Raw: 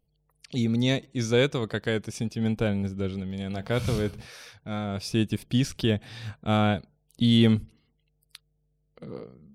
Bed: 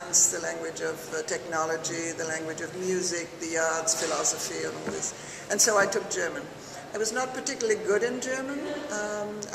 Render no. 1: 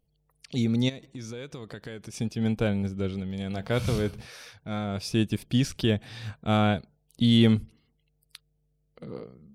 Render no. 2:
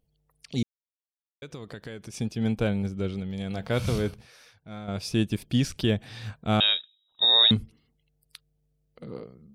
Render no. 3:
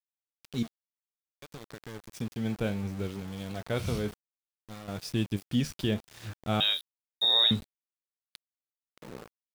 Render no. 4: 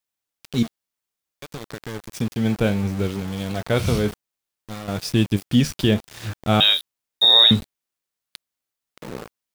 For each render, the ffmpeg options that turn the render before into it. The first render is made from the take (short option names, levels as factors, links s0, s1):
-filter_complex "[0:a]asplit=3[s0][s1][s2];[s0]afade=t=out:st=0.88:d=0.02[s3];[s1]acompressor=threshold=0.0178:ratio=8:attack=3.2:release=140:knee=1:detection=peak,afade=t=in:st=0.88:d=0.02,afade=t=out:st=2.16:d=0.02[s4];[s2]afade=t=in:st=2.16:d=0.02[s5];[s3][s4][s5]amix=inputs=3:normalize=0"
-filter_complex "[0:a]asettb=1/sr,asplit=3[s0][s1][s2];[s0]atrim=end=6.604[s3];[s1]atrim=start=6.6:end=7.51,asetpts=PTS-STARTPTS,afade=t=in:d=0.004:c=qsin,afade=t=out:st=0.906:d=0.004:c=qsin,lowpass=f=3300:t=q:w=0.5098,lowpass=f=3300:t=q:w=0.6013,lowpass=f=3300:t=q:w=0.9,lowpass=f=3300:t=q:w=2.563,afreqshift=-3900[s4];[s2]atrim=start=7.506[s5];[s3][s4]acrossfade=d=0.004:c1=hsin:c2=qsin[s6];[s6][s5]acrossfade=d=0.004:c1=qsin:c2=hsin,asplit=5[s7][s8][s9][s10][s11];[s7]atrim=end=0.63,asetpts=PTS-STARTPTS,afade=t=out:st=0.626:d=0.004:c=hsin[s12];[s8]atrim=start=0.63:end=1.42,asetpts=PTS-STARTPTS,volume=0[s13];[s9]atrim=start=1.42:end=4.142,asetpts=PTS-STARTPTS,afade=t=in:d=0.004:c=hsin[s14];[s10]atrim=start=4.138:end=4.882,asetpts=PTS-STARTPTS,volume=0.398[s15];[s11]atrim=start=4.878[s16];[s12][s13][s14]concat=n=3:v=0:a=1[s17];[s17][s15]acrossfade=d=0.004:c1=hsin:c2=hsin[s18];[s18][s16]acrossfade=d=0.004:c1=hsin:c2=hsin"
-af "flanger=delay=5.9:depth=9.3:regen=69:speed=0.6:shape=triangular,aeval=exprs='val(0)*gte(abs(val(0)),0.00891)':c=same"
-af "volume=3.35,alimiter=limit=0.708:level=0:latency=1"